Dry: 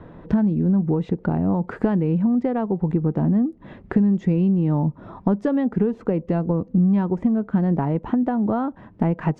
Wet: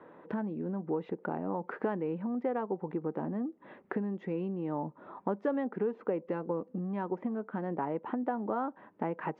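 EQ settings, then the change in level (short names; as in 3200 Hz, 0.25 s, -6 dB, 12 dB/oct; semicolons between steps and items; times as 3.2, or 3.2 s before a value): BPF 410–2400 Hz; notch 680 Hz, Q 12; -5.0 dB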